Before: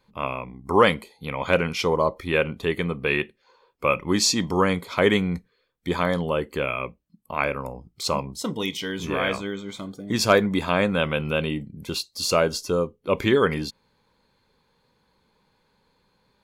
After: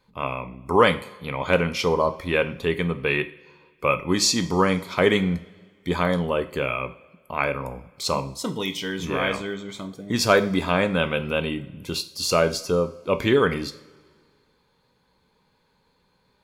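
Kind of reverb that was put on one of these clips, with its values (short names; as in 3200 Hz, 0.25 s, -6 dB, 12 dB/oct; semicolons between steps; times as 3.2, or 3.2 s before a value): two-slope reverb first 0.42 s, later 1.9 s, from -18 dB, DRR 9.5 dB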